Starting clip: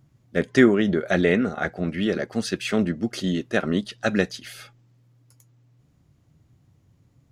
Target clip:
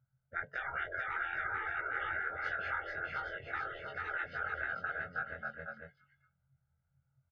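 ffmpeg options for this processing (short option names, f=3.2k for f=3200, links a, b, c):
-filter_complex "[0:a]afftfilt=real='re':imag='-im':win_size=2048:overlap=0.75,afftdn=nr=16:nf=-40,aecho=1:1:1.4:0.91,asplit=2[a][b];[b]aecho=0:1:440|814|1132|1402|1632:0.631|0.398|0.251|0.158|0.1[c];[a][c]amix=inputs=2:normalize=0,afftfilt=real='re*lt(hypot(re,im),0.0891)':imag='im*lt(hypot(re,im),0.0891)':win_size=1024:overlap=0.75,lowpass=f=1.5k:t=q:w=3.7,equalizer=f=260:t=o:w=0.69:g=-14,bandreject=f=730:w=20,volume=-5dB"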